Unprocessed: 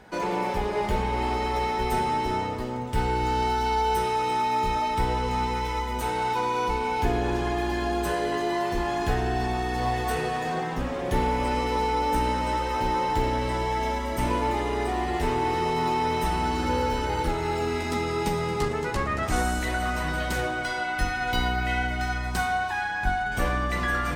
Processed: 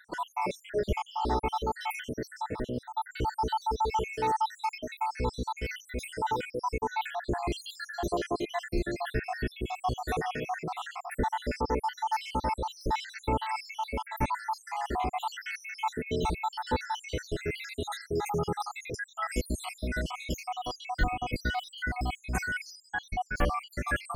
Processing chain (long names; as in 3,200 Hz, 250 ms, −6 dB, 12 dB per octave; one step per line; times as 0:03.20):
time-frequency cells dropped at random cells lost 77%
reversed playback
upward compression, threshold −31 dBFS
reversed playback